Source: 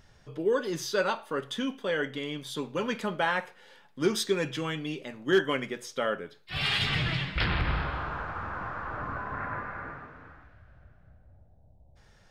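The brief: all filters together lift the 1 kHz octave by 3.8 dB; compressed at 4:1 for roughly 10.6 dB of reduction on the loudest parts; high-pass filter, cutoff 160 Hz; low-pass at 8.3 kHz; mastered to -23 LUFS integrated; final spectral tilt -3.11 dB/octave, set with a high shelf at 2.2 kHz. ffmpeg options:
-af "highpass=160,lowpass=8300,equalizer=f=1000:t=o:g=3.5,highshelf=f=2200:g=5.5,acompressor=threshold=0.0251:ratio=4,volume=3.98"

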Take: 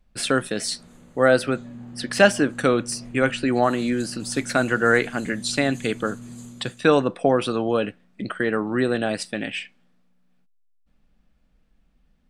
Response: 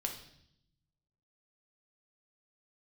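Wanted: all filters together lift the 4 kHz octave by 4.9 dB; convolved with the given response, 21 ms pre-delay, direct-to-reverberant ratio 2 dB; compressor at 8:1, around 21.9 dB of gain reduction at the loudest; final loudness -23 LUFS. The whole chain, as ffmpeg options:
-filter_complex "[0:a]equalizer=f=4000:t=o:g=6,acompressor=threshold=0.0224:ratio=8,asplit=2[s0][s1];[1:a]atrim=start_sample=2205,adelay=21[s2];[s1][s2]afir=irnorm=-1:irlink=0,volume=0.75[s3];[s0][s3]amix=inputs=2:normalize=0,volume=3.55"

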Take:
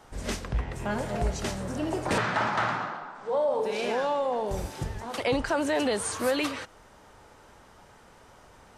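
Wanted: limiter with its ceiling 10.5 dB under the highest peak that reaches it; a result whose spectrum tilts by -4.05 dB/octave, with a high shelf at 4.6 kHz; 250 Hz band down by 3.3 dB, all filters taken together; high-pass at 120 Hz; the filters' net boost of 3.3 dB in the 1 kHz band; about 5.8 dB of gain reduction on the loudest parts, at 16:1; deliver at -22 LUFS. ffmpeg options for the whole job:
-af "highpass=120,equalizer=f=250:t=o:g=-4,equalizer=f=1000:t=o:g=4.5,highshelf=f=4600:g=-3.5,acompressor=threshold=0.0501:ratio=16,volume=5.01,alimiter=limit=0.224:level=0:latency=1"

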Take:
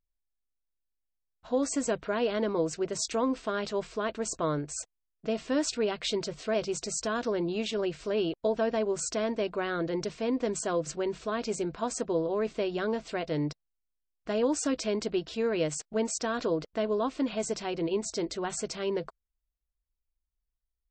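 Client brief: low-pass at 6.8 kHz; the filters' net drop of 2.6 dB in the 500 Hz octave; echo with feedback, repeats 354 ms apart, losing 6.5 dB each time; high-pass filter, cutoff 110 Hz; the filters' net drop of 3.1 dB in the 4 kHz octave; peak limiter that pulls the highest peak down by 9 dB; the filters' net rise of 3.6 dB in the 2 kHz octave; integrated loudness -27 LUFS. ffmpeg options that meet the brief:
-af "highpass=110,lowpass=6800,equalizer=f=500:t=o:g=-3.5,equalizer=f=2000:t=o:g=6.5,equalizer=f=4000:t=o:g=-6,alimiter=level_in=1.19:limit=0.0631:level=0:latency=1,volume=0.841,aecho=1:1:354|708|1062|1416|1770|2124:0.473|0.222|0.105|0.0491|0.0231|0.0109,volume=2.51"

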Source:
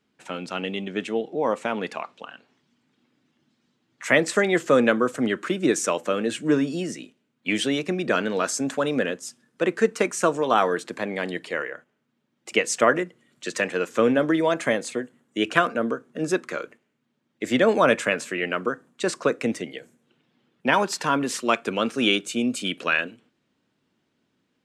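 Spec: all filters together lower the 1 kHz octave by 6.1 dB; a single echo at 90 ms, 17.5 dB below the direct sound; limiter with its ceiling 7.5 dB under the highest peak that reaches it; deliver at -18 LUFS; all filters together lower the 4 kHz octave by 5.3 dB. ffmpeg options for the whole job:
-af "equalizer=f=1000:t=o:g=-8,equalizer=f=4000:t=o:g=-7,alimiter=limit=0.2:level=0:latency=1,aecho=1:1:90:0.133,volume=2.99"

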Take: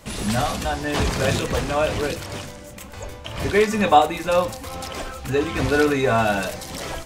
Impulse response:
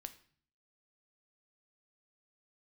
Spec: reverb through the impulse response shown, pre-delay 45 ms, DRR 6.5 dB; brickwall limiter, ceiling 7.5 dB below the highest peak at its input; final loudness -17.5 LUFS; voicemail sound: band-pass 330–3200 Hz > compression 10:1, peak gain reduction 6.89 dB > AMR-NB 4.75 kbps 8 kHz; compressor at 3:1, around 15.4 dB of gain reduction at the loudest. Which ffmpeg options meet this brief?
-filter_complex "[0:a]acompressor=threshold=0.0282:ratio=3,alimiter=level_in=1.12:limit=0.0631:level=0:latency=1,volume=0.891,asplit=2[s0][s1];[1:a]atrim=start_sample=2205,adelay=45[s2];[s1][s2]afir=irnorm=-1:irlink=0,volume=0.841[s3];[s0][s3]amix=inputs=2:normalize=0,highpass=330,lowpass=3200,acompressor=threshold=0.0178:ratio=10,volume=20" -ar 8000 -c:a libopencore_amrnb -b:a 4750

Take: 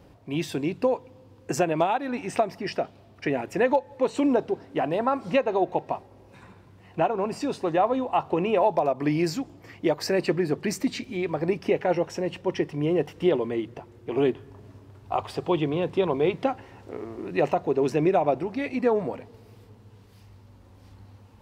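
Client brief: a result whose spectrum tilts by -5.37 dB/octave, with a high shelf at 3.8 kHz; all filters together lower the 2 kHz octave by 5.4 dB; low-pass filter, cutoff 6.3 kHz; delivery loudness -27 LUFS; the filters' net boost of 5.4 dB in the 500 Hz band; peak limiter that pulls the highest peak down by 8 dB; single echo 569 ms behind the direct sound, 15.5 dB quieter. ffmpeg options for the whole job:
-af "lowpass=6300,equalizer=f=500:t=o:g=7,equalizer=f=2000:t=o:g=-5.5,highshelf=f=3800:g=-5.5,alimiter=limit=0.188:level=0:latency=1,aecho=1:1:569:0.168,volume=0.841"

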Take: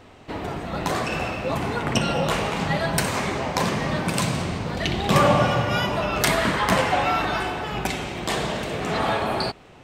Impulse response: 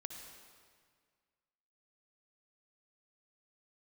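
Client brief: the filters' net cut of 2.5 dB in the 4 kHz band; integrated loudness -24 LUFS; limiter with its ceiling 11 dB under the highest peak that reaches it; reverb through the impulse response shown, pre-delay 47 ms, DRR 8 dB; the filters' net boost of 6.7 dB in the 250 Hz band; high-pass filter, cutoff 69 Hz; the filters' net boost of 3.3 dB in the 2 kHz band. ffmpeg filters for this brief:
-filter_complex "[0:a]highpass=69,equalizer=f=250:t=o:g=9,equalizer=f=2000:t=o:g=5.5,equalizer=f=4000:t=o:g=-6,alimiter=limit=0.211:level=0:latency=1,asplit=2[s0][s1];[1:a]atrim=start_sample=2205,adelay=47[s2];[s1][s2]afir=irnorm=-1:irlink=0,volume=0.562[s3];[s0][s3]amix=inputs=2:normalize=0,volume=0.841"

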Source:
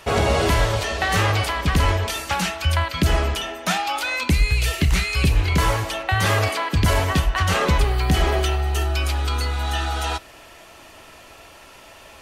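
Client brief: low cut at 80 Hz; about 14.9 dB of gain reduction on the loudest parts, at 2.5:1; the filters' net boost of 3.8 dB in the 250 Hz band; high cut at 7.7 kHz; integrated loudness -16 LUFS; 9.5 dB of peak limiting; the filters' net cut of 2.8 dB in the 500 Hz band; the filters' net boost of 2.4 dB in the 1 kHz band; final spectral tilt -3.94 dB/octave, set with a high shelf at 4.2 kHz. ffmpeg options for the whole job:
-af "highpass=80,lowpass=7700,equalizer=f=250:t=o:g=7.5,equalizer=f=500:t=o:g=-7.5,equalizer=f=1000:t=o:g=4.5,highshelf=f=4200:g=3.5,acompressor=threshold=0.0141:ratio=2.5,volume=10.6,alimiter=limit=0.473:level=0:latency=1"

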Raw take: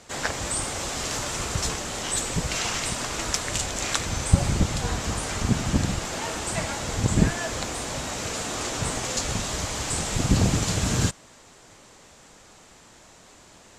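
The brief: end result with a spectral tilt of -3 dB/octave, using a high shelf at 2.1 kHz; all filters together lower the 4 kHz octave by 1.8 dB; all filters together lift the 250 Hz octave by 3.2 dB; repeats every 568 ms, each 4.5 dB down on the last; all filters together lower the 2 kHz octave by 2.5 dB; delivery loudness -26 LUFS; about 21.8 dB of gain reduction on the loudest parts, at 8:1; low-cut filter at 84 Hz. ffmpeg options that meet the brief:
-af "highpass=84,equalizer=f=250:t=o:g=4.5,equalizer=f=2000:t=o:g=-5,highshelf=f=2100:g=6.5,equalizer=f=4000:t=o:g=-8,acompressor=threshold=0.0158:ratio=8,aecho=1:1:568|1136|1704|2272|2840|3408|3976|4544|5112:0.596|0.357|0.214|0.129|0.0772|0.0463|0.0278|0.0167|0.01,volume=3.35"

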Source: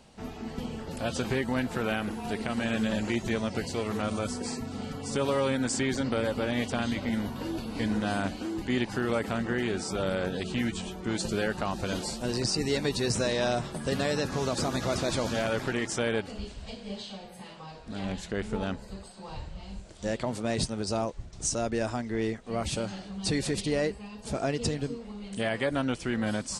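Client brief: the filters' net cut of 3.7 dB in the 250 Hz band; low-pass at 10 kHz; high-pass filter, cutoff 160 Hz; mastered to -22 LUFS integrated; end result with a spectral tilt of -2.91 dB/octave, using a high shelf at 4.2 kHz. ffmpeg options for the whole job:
-af "highpass=160,lowpass=10000,equalizer=f=250:t=o:g=-3.5,highshelf=f=4200:g=7,volume=2.82"

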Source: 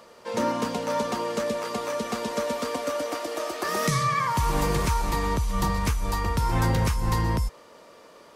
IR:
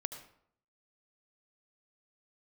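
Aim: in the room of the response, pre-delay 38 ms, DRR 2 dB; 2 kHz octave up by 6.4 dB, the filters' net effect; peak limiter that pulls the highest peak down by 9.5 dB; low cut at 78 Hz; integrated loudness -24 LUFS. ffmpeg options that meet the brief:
-filter_complex "[0:a]highpass=78,equalizer=f=2000:t=o:g=7.5,alimiter=limit=0.1:level=0:latency=1,asplit=2[s0][s1];[1:a]atrim=start_sample=2205,adelay=38[s2];[s1][s2]afir=irnorm=-1:irlink=0,volume=0.841[s3];[s0][s3]amix=inputs=2:normalize=0,volume=1.41"

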